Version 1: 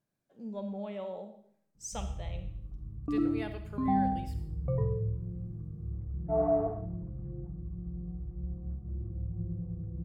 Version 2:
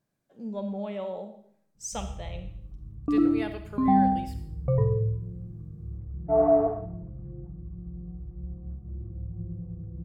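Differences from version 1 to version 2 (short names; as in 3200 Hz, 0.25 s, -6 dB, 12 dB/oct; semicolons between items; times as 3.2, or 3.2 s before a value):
speech +5.0 dB; second sound +7.0 dB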